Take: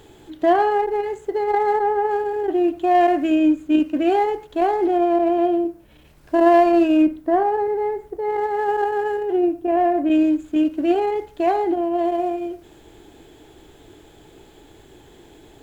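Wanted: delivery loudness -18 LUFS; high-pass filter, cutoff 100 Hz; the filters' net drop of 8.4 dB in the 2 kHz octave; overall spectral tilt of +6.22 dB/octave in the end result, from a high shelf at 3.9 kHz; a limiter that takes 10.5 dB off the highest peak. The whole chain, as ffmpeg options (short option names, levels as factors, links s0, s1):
-af "highpass=100,equalizer=f=2000:t=o:g=-9,highshelf=f=3900:g=-7.5,volume=1.88,alimiter=limit=0.316:level=0:latency=1"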